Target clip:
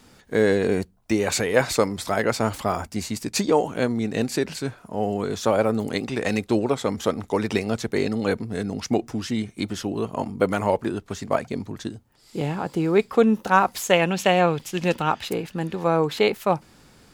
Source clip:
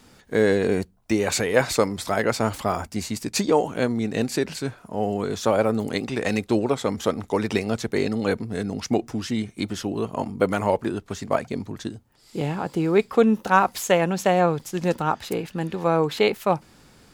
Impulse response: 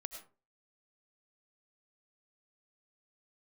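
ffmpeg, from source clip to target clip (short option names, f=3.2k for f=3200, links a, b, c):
-filter_complex "[0:a]asettb=1/sr,asplit=3[a][b][c];[a]atrim=end=13.934[d];[b]atrim=start=13.93:end=15.28,asetpts=PTS-STARTPTS,afade=t=in:d=0.004:c=qsin,afade=t=out:st=1.346:d=0.004:c=qsin,equalizer=f=2.8k:w=1.5:g=9[e];[c]atrim=start=15.276[f];[d][e]acrossfade=d=0.004:c1=hsin:c2=qsin[g];[g][f]acrossfade=d=0.004:c1=qsin:c2=hsin"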